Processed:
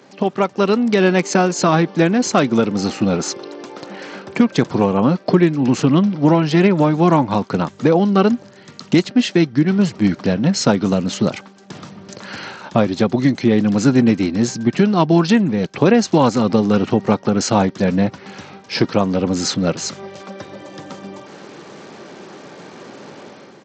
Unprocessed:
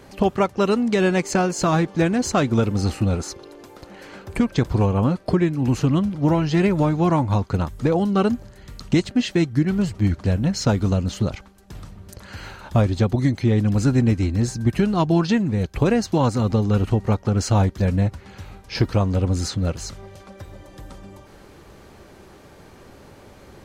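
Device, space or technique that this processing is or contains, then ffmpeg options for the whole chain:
Bluetooth headset: -af "highpass=f=160:w=0.5412,highpass=f=160:w=1.3066,dynaudnorm=f=160:g=5:m=10dB,aresample=16000,aresample=44100" -ar 32000 -c:a sbc -b:a 64k

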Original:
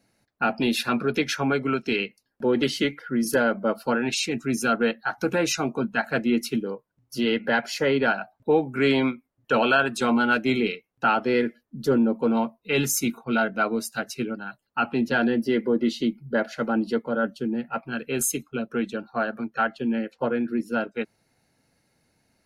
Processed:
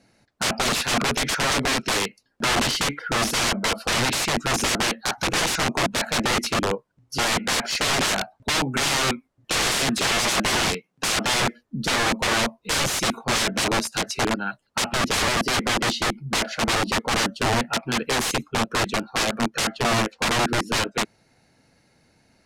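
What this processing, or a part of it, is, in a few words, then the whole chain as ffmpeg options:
overflowing digital effects unit: -filter_complex "[0:a]asettb=1/sr,asplit=3[a][b][c];[a]atrim=end=9.594[d];[b]atrim=start=9.59:end=11.34,asetpts=PTS-STARTPTS,afade=t=in:d=0.004:c=qsin,afade=t=out:st=1.746:d=0.004:c=qsin,lowshelf=f=110:t=q:w=3:g=-13.5[e];[c]atrim=start=11.336[f];[d][e]acrossfade=d=0.004:c1=hsin:c2=qsin[g];[g][f]acrossfade=d=0.004:c1=qsin:c2=hsin,aeval=exprs='(mod(15*val(0)+1,2)-1)/15':c=same,lowpass=8.4k,volume=7.5dB"

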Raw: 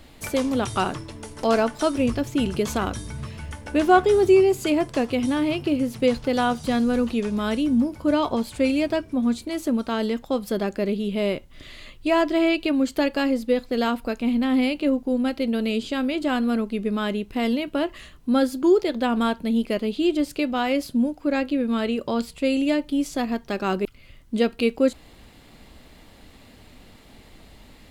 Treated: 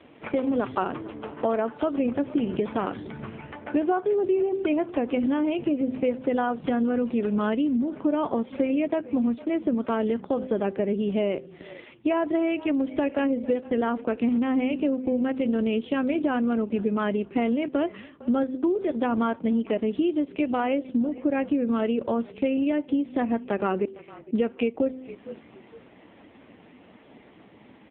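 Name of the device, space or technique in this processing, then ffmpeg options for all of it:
voicemail: -filter_complex "[0:a]aemphasis=mode=reproduction:type=bsi,highshelf=f=7.8k:g=5.5,bandreject=f=129.3:t=h:w=4,bandreject=f=258.6:t=h:w=4,bandreject=f=387.9:t=h:w=4,bandreject=f=517.2:t=h:w=4,asplit=3[a][b][c];[b]adelay=455,afreqshift=-36,volume=-22.5dB[d];[c]adelay=910,afreqshift=-72,volume=-31.9dB[e];[a][d][e]amix=inputs=3:normalize=0,highpass=300,lowpass=3.2k,acompressor=threshold=-24dB:ratio=10,volume=4dB" -ar 8000 -c:a libopencore_amrnb -b:a 5900

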